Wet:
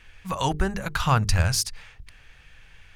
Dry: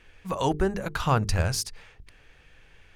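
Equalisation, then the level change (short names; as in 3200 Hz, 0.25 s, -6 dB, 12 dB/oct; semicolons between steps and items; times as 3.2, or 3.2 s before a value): bell 390 Hz -10 dB 1.7 oct; +5.0 dB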